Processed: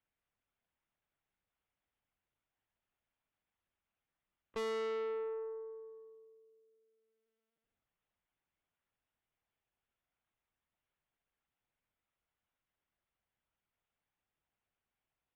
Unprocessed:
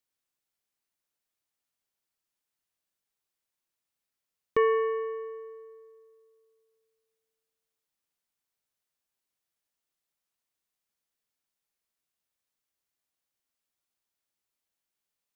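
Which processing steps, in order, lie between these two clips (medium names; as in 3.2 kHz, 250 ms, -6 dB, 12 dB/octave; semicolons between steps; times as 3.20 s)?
median filter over 9 samples; LPC vocoder at 8 kHz pitch kept; valve stage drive 39 dB, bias 0.3; trim +3 dB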